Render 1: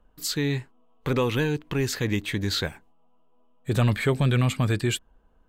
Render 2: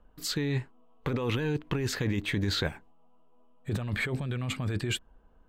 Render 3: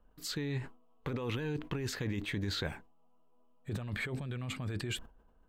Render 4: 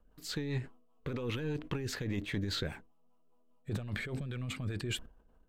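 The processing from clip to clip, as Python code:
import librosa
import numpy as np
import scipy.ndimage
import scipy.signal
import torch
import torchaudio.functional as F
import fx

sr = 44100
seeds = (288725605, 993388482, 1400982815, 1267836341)

y1 = fx.over_compress(x, sr, threshold_db=-27.0, ratio=-1.0)
y1 = fx.high_shelf(y1, sr, hz=4800.0, db=-9.5)
y1 = y1 * librosa.db_to_amplitude(-2.0)
y2 = fx.sustainer(y1, sr, db_per_s=140.0)
y2 = y2 * librosa.db_to_amplitude(-6.5)
y3 = np.where(y2 < 0.0, 10.0 ** (-3.0 / 20.0) * y2, y2)
y3 = fx.rotary(y3, sr, hz=5.0)
y3 = y3 * librosa.db_to_amplitude(3.0)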